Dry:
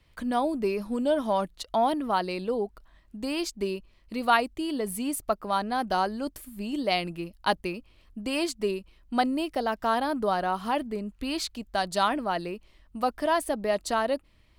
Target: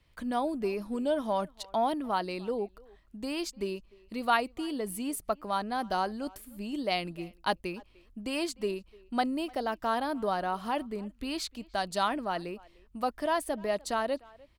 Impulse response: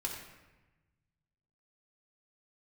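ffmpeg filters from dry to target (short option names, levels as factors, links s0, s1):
-filter_complex "[0:a]asplit=2[s0][s1];[s1]adelay=300,highpass=300,lowpass=3400,asoftclip=type=hard:threshold=0.119,volume=0.0708[s2];[s0][s2]amix=inputs=2:normalize=0,volume=0.631"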